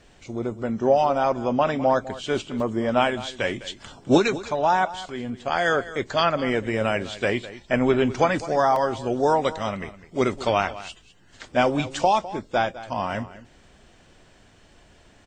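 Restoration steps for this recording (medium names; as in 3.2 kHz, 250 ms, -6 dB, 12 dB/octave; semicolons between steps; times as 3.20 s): interpolate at 2.60/8.76 s, 2.3 ms; inverse comb 205 ms -16 dB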